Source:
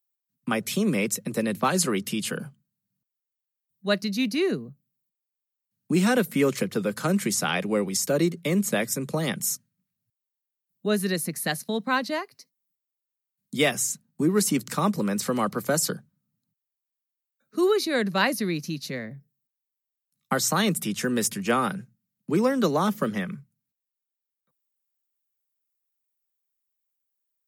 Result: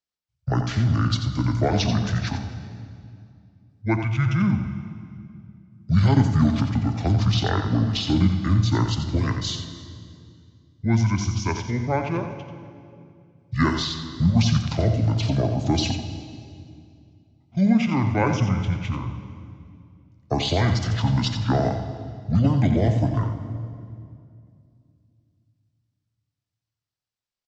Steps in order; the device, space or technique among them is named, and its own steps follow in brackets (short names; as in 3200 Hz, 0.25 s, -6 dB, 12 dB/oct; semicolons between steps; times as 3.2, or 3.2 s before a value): Bessel low-pass 10000 Hz, order 8; monster voice (pitch shift -10.5 st; low shelf 160 Hz +6 dB; echo 88 ms -9 dB; reverb RT60 2.4 s, pre-delay 17 ms, DRR 8.5 dB)